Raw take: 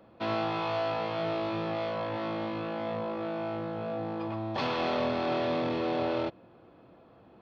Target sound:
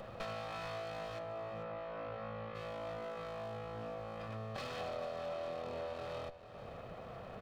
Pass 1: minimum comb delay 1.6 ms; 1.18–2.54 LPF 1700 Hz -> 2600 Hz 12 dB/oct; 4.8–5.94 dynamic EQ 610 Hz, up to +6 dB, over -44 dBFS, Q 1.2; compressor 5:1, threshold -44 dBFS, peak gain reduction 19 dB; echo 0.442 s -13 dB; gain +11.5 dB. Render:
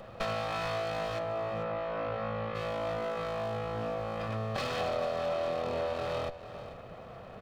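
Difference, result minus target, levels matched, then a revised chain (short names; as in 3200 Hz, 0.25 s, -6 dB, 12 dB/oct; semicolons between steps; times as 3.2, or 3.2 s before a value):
compressor: peak gain reduction -9 dB
minimum comb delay 1.6 ms; 1.18–2.54 LPF 1700 Hz -> 2600 Hz 12 dB/oct; 4.8–5.94 dynamic EQ 610 Hz, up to +6 dB, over -44 dBFS, Q 1.2; compressor 5:1, threshold -55.5 dBFS, peak gain reduction 28 dB; echo 0.442 s -13 dB; gain +11.5 dB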